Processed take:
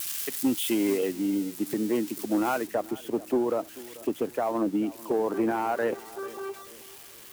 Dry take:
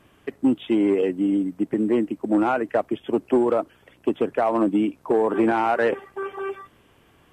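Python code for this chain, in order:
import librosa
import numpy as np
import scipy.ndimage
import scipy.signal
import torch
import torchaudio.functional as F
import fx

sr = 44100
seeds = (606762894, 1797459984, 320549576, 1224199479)

y = x + 0.5 * 10.0 ** (-25.5 / 20.0) * np.diff(np.sign(x), prepend=np.sign(x[:1]))
y = fx.high_shelf(y, sr, hz=2000.0, db=fx.steps((0.0, 10.5), (0.96, 5.0), (2.66, -5.5)))
y = fx.echo_filtered(y, sr, ms=439, feedback_pct=42, hz=2000.0, wet_db=-19.0)
y = y * 10.0 ** (-6.0 / 20.0)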